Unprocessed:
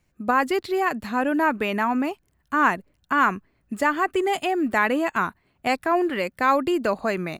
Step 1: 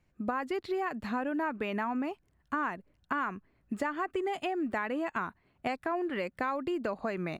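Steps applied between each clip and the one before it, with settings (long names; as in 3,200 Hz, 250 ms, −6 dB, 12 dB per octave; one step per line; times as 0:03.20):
low-pass filter 3,000 Hz 6 dB per octave
downward compressor, threshold −27 dBFS, peak gain reduction 12 dB
level −2.5 dB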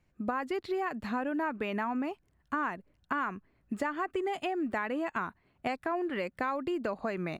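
no processing that can be heard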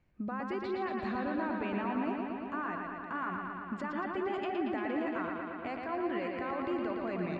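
brickwall limiter −29 dBFS, peak gain reduction 9.5 dB
high-frequency loss of the air 140 metres
bucket-brigade delay 115 ms, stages 4,096, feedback 79%, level −4 dB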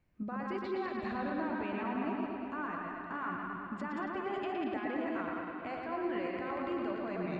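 delay that plays each chunk backwards 108 ms, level −3.5 dB
level −3 dB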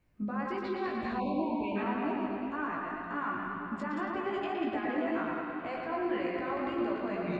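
hum removal 88.15 Hz, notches 32
time-frequency box erased 0:01.18–0:01.76, 1,100–2,200 Hz
chorus effect 1.9 Hz, delay 17 ms, depth 3 ms
level +6.5 dB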